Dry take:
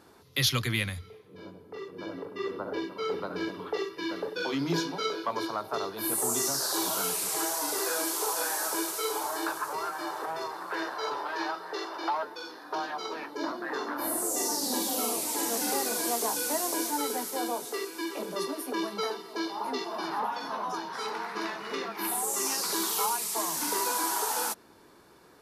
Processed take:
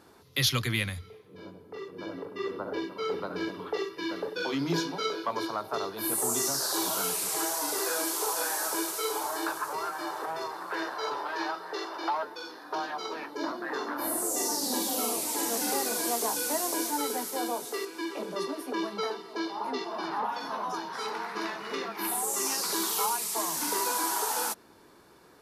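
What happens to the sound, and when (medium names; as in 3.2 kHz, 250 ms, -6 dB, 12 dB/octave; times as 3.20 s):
17.85–20.29 s: treble shelf 8.6 kHz -12 dB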